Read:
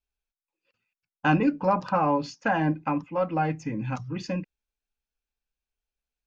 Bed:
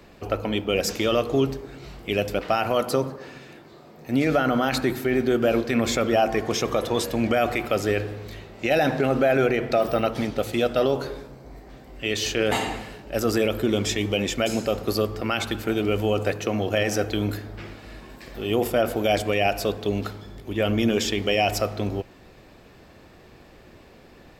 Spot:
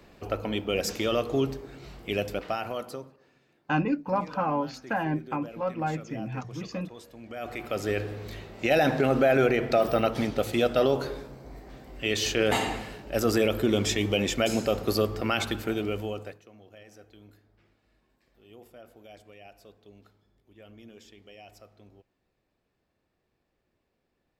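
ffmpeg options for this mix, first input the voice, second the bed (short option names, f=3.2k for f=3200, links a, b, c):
-filter_complex "[0:a]adelay=2450,volume=-4dB[a];[1:a]volume=16.5dB,afade=t=out:st=2.16:d=0.97:silence=0.125893,afade=t=in:st=7.27:d=1.02:silence=0.0891251,afade=t=out:st=15.39:d=1.03:silence=0.0473151[b];[a][b]amix=inputs=2:normalize=0"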